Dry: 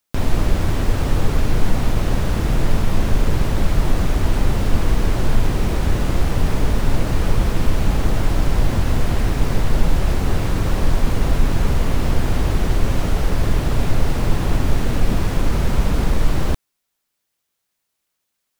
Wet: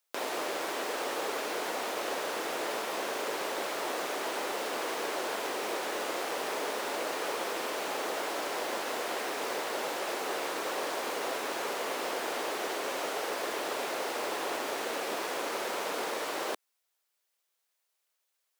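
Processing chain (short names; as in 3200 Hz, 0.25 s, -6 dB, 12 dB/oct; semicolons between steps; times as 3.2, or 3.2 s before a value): HPF 410 Hz 24 dB/oct; gain -4 dB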